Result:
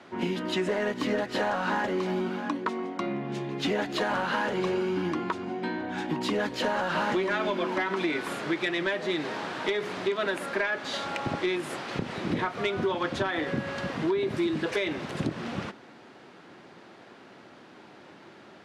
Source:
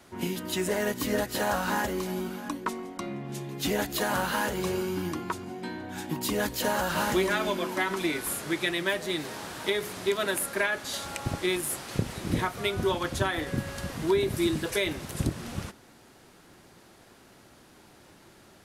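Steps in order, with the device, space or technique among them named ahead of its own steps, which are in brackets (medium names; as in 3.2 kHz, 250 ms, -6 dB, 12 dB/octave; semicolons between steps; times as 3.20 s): AM radio (band-pass 180–3300 Hz; compression, threshold -29 dBFS, peak gain reduction 9 dB; saturation -23 dBFS, distortion -22 dB); trim +6 dB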